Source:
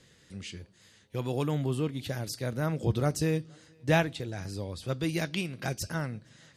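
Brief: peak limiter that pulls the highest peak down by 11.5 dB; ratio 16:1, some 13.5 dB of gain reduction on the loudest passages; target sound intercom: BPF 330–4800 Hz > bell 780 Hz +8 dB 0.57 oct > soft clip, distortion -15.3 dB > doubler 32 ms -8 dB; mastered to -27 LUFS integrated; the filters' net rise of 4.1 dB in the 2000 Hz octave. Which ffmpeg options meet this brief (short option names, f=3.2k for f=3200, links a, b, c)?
-filter_complex "[0:a]equalizer=f=2k:t=o:g=5,acompressor=threshold=-31dB:ratio=16,alimiter=level_in=5.5dB:limit=-24dB:level=0:latency=1,volume=-5.5dB,highpass=330,lowpass=4.8k,equalizer=f=780:t=o:w=0.57:g=8,asoftclip=threshold=-34dB,asplit=2[a][b];[b]adelay=32,volume=-8dB[c];[a][c]amix=inputs=2:normalize=0,volume=17dB"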